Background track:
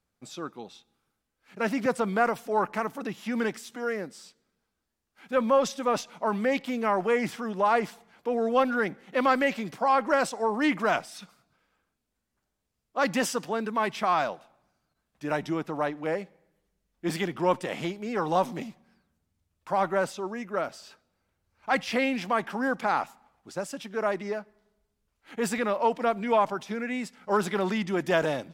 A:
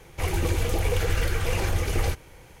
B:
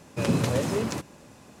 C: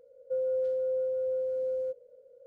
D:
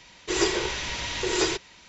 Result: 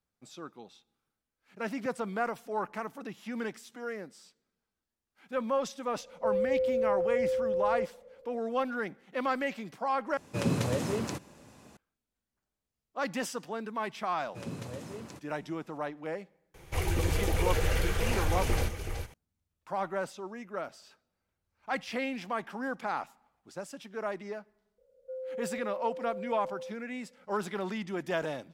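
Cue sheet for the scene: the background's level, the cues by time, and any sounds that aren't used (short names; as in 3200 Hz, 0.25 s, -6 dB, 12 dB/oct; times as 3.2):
background track -7.5 dB
5.93 add C -2.5 dB + tilt -4 dB/oct
10.17 replace with B -4.5 dB
14.18 add B -15.5 dB
16.54 add A -4 dB + echo 0.375 s -8 dB
24.78 add C -9 dB + HPF 320 Hz
not used: D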